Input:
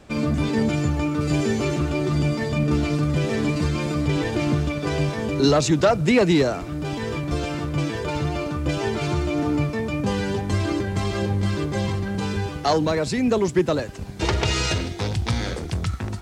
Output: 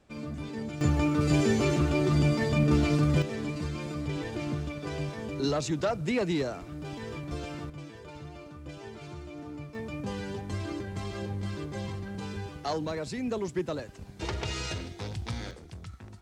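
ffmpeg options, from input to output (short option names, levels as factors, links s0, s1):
-af "asetnsamples=n=441:p=0,asendcmd='0.81 volume volume -2.5dB;3.22 volume volume -11dB;7.7 volume volume -19dB;9.75 volume volume -11.5dB;15.51 volume volume -18dB',volume=0.178"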